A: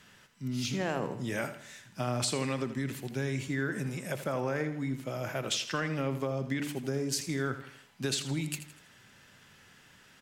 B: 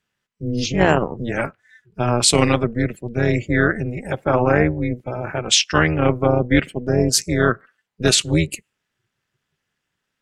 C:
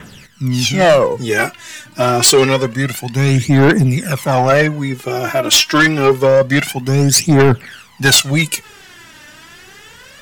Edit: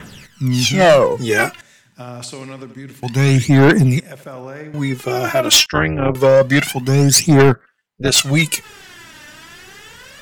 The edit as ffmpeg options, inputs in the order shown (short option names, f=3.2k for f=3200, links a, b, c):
-filter_complex "[0:a]asplit=2[a][b];[1:a]asplit=2[c][d];[2:a]asplit=5[e][f][g][h][i];[e]atrim=end=1.612[j];[a]atrim=start=1.608:end=3.032[k];[f]atrim=start=3.028:end=4.002[l];[b]atrim=start=3.998:end=4.742[m];[g]atrim=start=4.738:end=5.662[n];[c]atrim=start=5.658:end=6.152[o];[h]atrim=start=6.148:end=7.55[p];[d]atrim=start=7.49:end=8.19[q];[i]atrim=start=8.13[r];[j][k]acrossfade=d=0.004:c1=hsin:c2=hsin[s];[s][l]acrossfade=d=0.004:c1=hsin:c2=hsin[t];[t][m]acrossfade=d=0.004:c1=hsin:c2=hsin[u];[u][n]acrossfade=d=0.004:c1=hsin:c2=hsin[v];[v][o]acrossfade=d=0.004:c1=hsin:c2=hsin[w];[w][p]acrossfade=d=0.004:c1=hsin:c2=hsin[x];[x][q]acrossfade=d=0.06:c1=tri:c2=tri[y];[y][r]acrossfade=d=0.06:c1=tri:c2=tri"